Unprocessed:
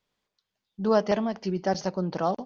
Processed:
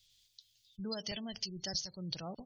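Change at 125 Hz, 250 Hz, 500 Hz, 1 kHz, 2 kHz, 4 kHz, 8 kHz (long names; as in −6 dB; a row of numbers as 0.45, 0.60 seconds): −12.5 dB, −14.5 dB, −21.0 dB, −22.0 dB, −12.0 dB, +3.0 dB, can't be measured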